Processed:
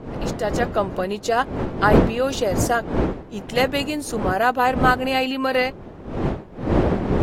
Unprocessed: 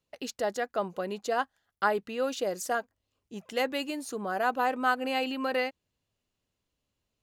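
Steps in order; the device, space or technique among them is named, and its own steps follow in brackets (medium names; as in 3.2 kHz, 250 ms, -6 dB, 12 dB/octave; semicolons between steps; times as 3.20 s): smartphone video outdoors (wind noise 390 Hz -32 dBFS; level rider gain up to 7.5 dB; trim +1.5 dB; AAC 48 kbps 44.1 kHz)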